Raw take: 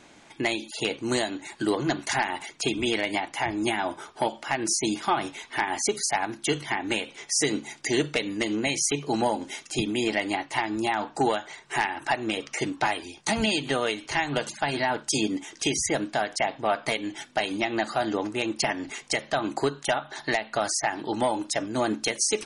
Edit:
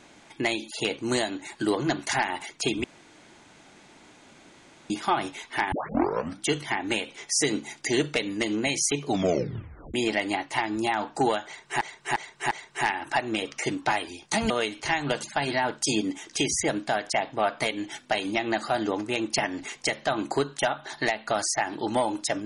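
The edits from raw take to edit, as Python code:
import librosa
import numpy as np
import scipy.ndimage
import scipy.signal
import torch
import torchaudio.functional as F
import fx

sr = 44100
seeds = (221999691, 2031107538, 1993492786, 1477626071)

y = fx.edit(x, sr, fx.room_tone_fill(start_s=2.84, length_s=2.06),
    fx.tape_start(start_s=5.72, length_s=0.74),
    fx.tape_stop(start_s=9.06, length_s=0.88),
    fx.repeat(start_s=11.46, length_s=0.35, count=4),
    fx.cut(start_s=13.45, length_s=0.31), tone=tone)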